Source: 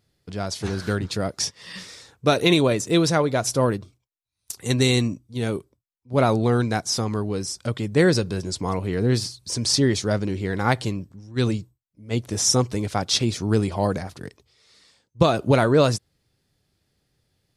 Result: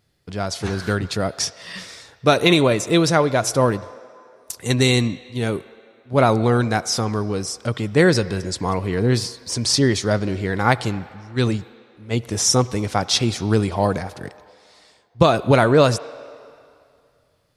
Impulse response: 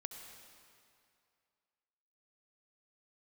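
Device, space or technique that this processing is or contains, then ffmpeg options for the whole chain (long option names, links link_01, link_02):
filtered reverb send: -filter_complex "[0:a]asplit=2[link_01][link_02];[link_02]highpass=480,lowpass=3500[link_03];[1:a]atrim=start_sample=2205[link_04];[link_03][link_04]afir=irnorm=-1:irlink=0,volume=-5.5dB[link_05];[link_01][link_05]amix=inputs=2:normalize=0,volume=2.5dB"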